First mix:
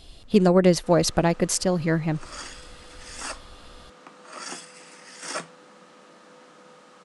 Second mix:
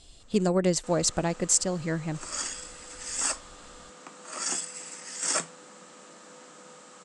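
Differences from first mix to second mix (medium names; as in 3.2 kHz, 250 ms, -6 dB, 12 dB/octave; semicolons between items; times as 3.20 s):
speech -7.0 dB; master: add resonant low-pass 7.7 kHz, resonance Q 5.8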